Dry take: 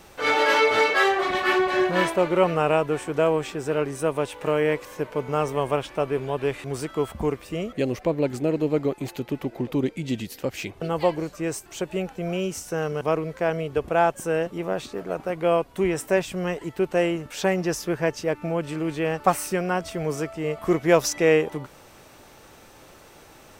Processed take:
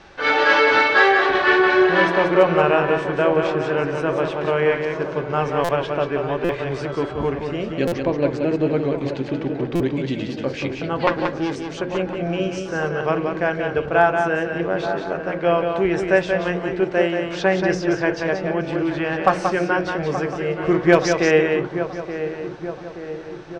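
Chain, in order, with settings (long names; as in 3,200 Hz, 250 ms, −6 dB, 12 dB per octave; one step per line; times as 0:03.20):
0:11.07–0:11.56: phase distortion by the signal itself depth 0.86 ms
low-pass filter 5,200 Hz 24 dB per octave
parametric band 1,600 Hz +8.5 dB 0.2 octaves
mains-hum notches 60/120/180/240/300/360/420/480/540 Hz
feedback echo with a low-pass in the loop 877 ms, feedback 59%, low-pass 1,400 Hz, level −10 dB
on a send at −10 dB: convolution reverb RT60 0.40 s, pre-delay 3 ms
on the sum: hard clipping −6 dBFS, distortion −32 dB
0:16.84–0:17.28: low-shelf EQ 160 Hz −11 dB
single-tap delay 181 ms −5.5 dB
buffer that repeats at 0:05.64/0:06.44/0:07.87/0:09.75, samples 256, times 8
level +2.5 dB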